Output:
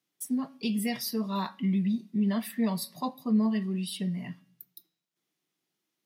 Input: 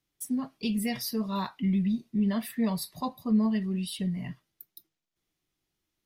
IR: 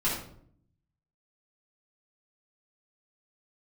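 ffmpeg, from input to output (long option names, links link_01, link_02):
-filter_complex "[0:a]highpass=frequency=160:width=0.5412,highpass=frequency=160:width=1.3066,bandreject=frequency=278.4:width_type=h:width=4,bandreject=frequency=556.8:width_type=h:width=4,bandreject=frequency=835.2:width_type=h:width=4,bandreject=frequency=1113.6:width_type=h:width=4,bandreject=frequency=1392:width_type=h:width=4,bandreject=frequency=1670.4:width_type=h:width=4,bandreject=frequency=1948.8:width_type=h:width=4,bandreject=frequency=2227.2:width_type=h:width=4,bandreject=frequency=2505.6:width_type=h:width=4,bandreject=frequency=2784:width_type=h:width=4,bandreject=frequency=3062.4:width_type=h:width=4,bandreject=frequency=3340.8:width_type=h:width=4,bandreject=frequency=3619.2:width_type=h:width=4,bandreject=frequency=3897.6:width_type=h:width=4,bandreject=frequency=4176:width_type=h:width=4,bandreject=frequency=4454.4:width_type=h:width=4,bandreject=frequency=4732.8:width_type=h:width=4,bandreject=frequency=5011.2:width_type=h:width=4,bandreject=frequency=5289.6:width_type=h:width=4,bandreject=frequency=5568:width_type=h:width=4,asplit=2[link_01][link_02];[1:a]atrim=start_sample=2205[link_03];[link_02][link_03]afir=irnorm=-1:irlink=0,volume=-33dB[link_04];[link_01][link_04]amix=inputs=2:normalize=0"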